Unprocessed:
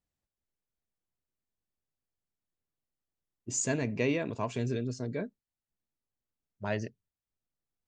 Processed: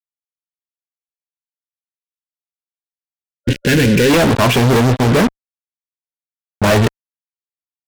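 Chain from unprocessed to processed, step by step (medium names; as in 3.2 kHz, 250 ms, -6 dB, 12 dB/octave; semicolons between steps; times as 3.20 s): resampled via 8 kHz; fuzz box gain 52 dB, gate -49 dBFS; time-frequency box 1.65–4.10 s, 560–1400 Hz -15 dB; trim +3.5 dB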